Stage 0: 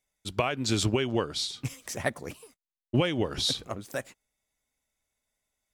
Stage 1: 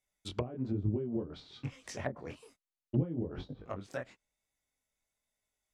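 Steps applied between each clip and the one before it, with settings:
chorus effect 1.1 Hz, delay 19.5 ms, depth 5.2 ms
treble cut that deepens with the level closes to 320 Hz, closed at −26.5 dBFS
level −1.5 dB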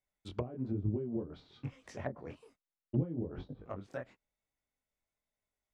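high-shelf EQ 2,900 Hz −11.5 dB
level −1.5 dB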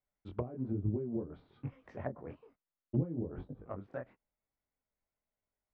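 low-pass filter 1,700 Hz 12 dB per octave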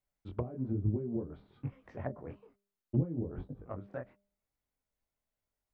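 low-shelf EQ 150 Hz +4.5 dB
hum removal 200.9 Hz, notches 3

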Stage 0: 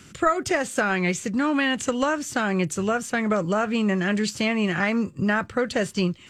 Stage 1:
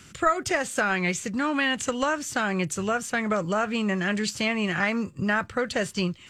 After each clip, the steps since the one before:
parametric band 290 Hz −4.5 dB 2.2 octaves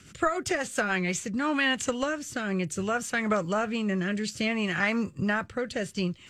rotating-speaker cabinet horn 7.5 Hz, later 0.6 Hz, at 0:00.63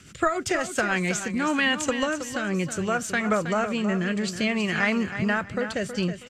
repeating echo 321 ms, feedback 25%, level −10 dB
level +2.5 dB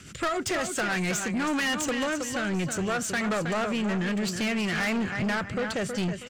soft clipping −27 dBFS, distortion −8 dB
level +3 dB

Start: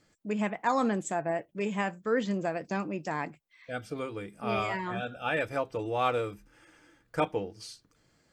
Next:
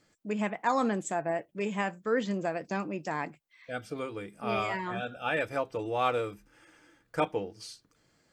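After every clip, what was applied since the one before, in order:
low-shelf EQ 120 Hz −5 dB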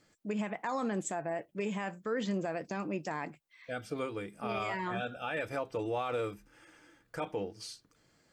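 brickwall limiter −25 dBFS, peak gain reduction 10.5 dB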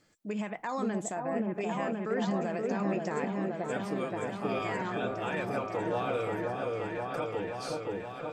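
echo whose low-pass opens from repeat to repeat 526 ms, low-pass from 750 Hz, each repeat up 1 octave, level 0 dB

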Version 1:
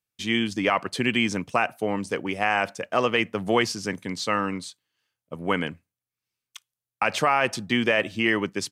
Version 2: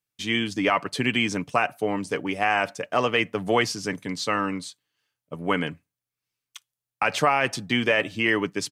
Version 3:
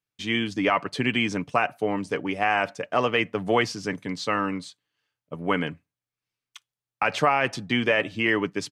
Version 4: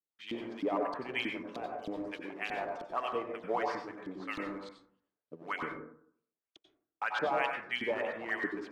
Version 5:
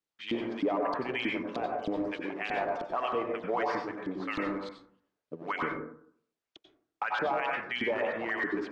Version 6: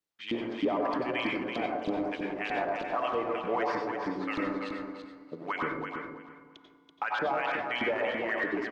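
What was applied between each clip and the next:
comb filter 6.9 ms, depth 32%
high-shelf EQ 7,100 Hz −12 dB
in parallel at −5 dB: sample-and-hold swept by an LFO 18×, swing 160% 3.2 Hz; on the sum: auto-filter band-pass saw up 3.2 Hz 280–4,100 Hz; dense smooth reverb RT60 0.61 s, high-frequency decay 0.3×, pre-delay 80 ms, DRR 1.5 dB; level −9 dB
brickwall limiter −28 dBFS, peak gain reduction 10.5 dB; high-frequency loss of the air 74 metres; level +7 dB
repeating echo 332 ms, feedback 20%, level −6.5 dB; feedback delay network reverb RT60 2.9 s, low-frequency decay 1.35×, high-frequency decay 0.85×, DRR 17 dB

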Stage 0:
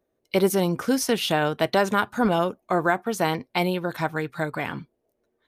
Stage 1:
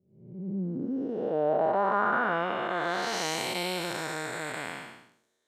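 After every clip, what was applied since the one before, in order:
spectrum smeared in time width 414 ms
low-pass filter sweep 100 Hz → 7,200 Hz, 0:00.08–0:03.41
RIAA equalisation recording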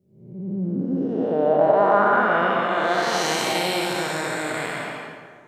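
convolution reverb RT60 1.8 s, pre-delay 95 ms, DRR 1 dB
level +5.5 dB

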